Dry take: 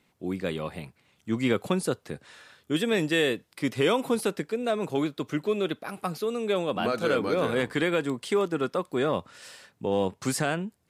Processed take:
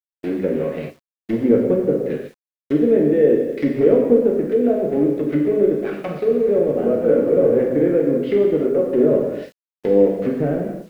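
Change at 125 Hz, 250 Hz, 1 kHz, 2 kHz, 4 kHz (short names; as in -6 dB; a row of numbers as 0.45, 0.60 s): +6.0 dB, +10.5 dB, -3.0 dB, -5.5 dB, under -10 dB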